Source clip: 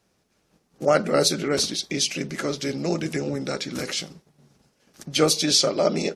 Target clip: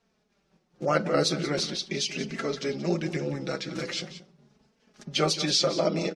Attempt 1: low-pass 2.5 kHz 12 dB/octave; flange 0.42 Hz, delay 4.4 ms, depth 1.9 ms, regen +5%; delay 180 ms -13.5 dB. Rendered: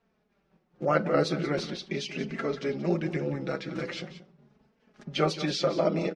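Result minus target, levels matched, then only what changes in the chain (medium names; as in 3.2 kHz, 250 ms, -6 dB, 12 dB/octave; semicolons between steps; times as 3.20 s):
4 kHz band -6.0 dB
change: low-pass 5.3 kHz 12 dB/octave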